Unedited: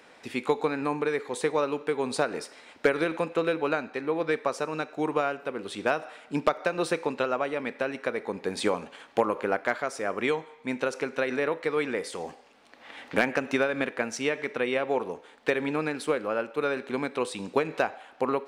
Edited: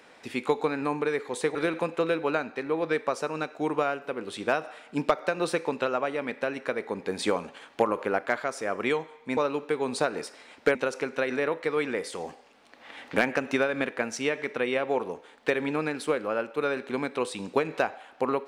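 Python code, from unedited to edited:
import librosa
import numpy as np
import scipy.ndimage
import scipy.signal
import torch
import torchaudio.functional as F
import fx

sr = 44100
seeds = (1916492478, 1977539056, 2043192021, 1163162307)

y = fx.edit(x, sr, fx.move(start_s=1.55, length_s=1.38, to_s=10.75), tone=tone)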